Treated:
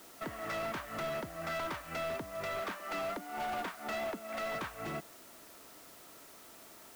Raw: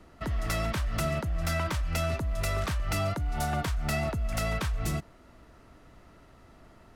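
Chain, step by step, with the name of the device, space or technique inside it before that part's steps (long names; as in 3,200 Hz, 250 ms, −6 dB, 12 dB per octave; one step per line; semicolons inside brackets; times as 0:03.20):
0:02.59–0:04.55: Butterworth high-pass 180 Hz 96 dB per octave
aircraft radio (band-pass filter 310–2,300 Hz; hard clipping −34 dBFS, distortion −10 dB; white noise bed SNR 16 dB)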